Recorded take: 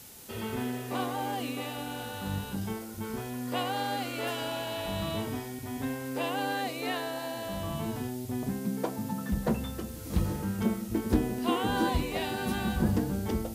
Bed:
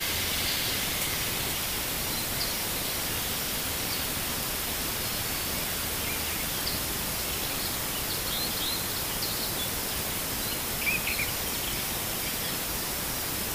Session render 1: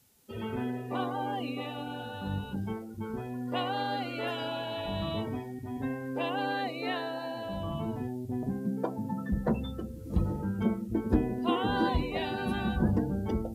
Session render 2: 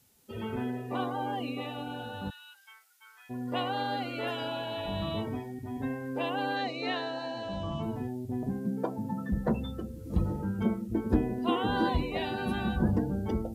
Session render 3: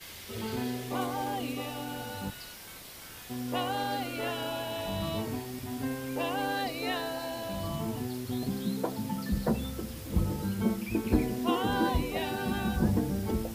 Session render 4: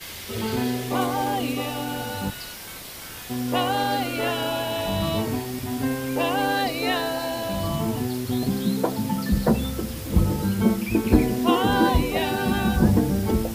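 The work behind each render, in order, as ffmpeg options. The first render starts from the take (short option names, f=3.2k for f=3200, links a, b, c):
-af "afftdn=nr=17:nf=-40"
-filter_complex "[0:a]asplit=3[a][b][c];[a]afade=t=out:st=2.29:d=0.02[d];[b]highpass=f=1.5k:w=0.5412,highpass=f=1.5k:w=1.3066,afade=t=in:st=2.29:d=0.02,afade=t=out:st=3.29:d=0.02[e];[c]afade=t=in:st=3.29:d=0.02[f];[d][e][f]amix=inputs=3:normalize=0,asettb=1/sr,asplit=3[g][h][i];[g]atrim=end=6.564[j];[h]atrim=start=6.56:end=7.83,asetpts=PTS-STARTPTS,afade=t=in:d=0.004:c=qsin,afade=t=out:st=1.266:d=0.004:c=qsin,lowpass=f=5.9k:t=q:w=2.3[k];[i]atrim=start=7.826[l];[j][k]acrossfade=d=0.004:c1=hsin:c2=qsin[m];[m][l]acrossfade=d=0.004:c1=qsin:c2=hsin"
-filter_complex "[1:a]volume=-16.5dB[a];[0:a][a]amix=inputs=2:normalize=0"
-af "volume=8.5dB"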